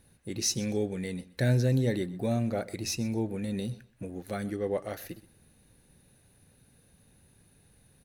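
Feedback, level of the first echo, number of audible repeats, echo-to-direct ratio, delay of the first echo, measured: 20%, -19.5 dB, 2, -19.5 dB, 126 ms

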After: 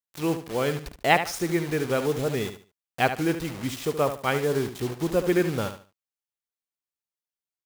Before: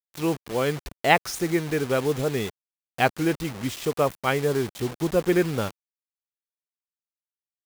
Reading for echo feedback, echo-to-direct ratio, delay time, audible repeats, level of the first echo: 26%, -9.5 dB, 73 ms, 3, -10.0 dB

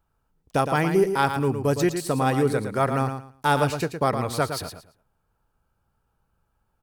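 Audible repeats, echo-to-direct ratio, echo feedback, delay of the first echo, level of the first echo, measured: 3, -8.0 dB, 22%, 113 ms, -8.0 dB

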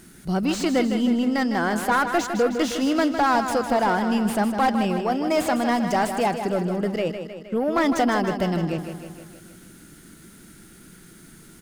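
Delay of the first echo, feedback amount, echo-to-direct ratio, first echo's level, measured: 156 ms, 59%, -6.5 dB, -8.5 dB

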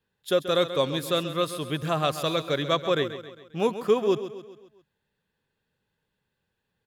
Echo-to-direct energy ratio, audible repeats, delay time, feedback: -11.0 dB, 4, 134 ms, 49%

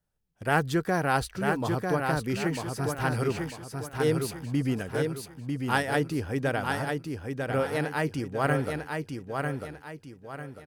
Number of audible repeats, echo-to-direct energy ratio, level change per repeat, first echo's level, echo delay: 4, -4.0 dB, -9.0 dB, -4.5 dB, 947 ms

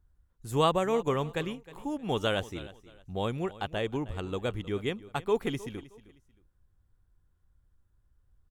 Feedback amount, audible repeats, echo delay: 28%, 2, 312 ms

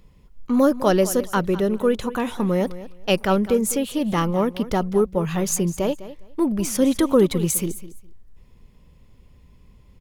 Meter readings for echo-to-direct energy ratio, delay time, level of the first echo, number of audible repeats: -15.5 dB, 205 ms, -15.5 dB, 2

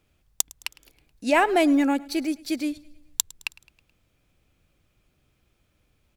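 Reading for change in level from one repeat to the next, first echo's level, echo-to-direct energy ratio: -5.5 dB, -22.5 dB, -21.0 dB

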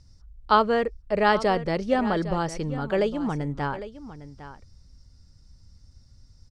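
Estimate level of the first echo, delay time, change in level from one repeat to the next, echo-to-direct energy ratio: -14.0 dB, 806 ms, no regular repeats, -14.0 dB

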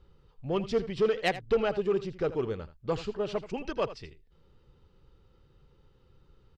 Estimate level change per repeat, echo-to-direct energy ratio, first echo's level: no regular repeats, -14.5 dB, -14.5 dB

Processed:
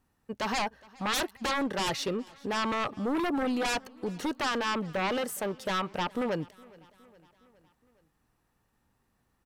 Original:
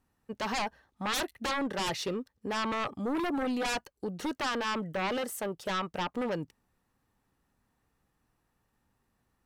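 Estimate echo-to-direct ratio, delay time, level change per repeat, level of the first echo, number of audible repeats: -22.5 dB, 414 ms, -4.5 dB, -24.0 dB, 3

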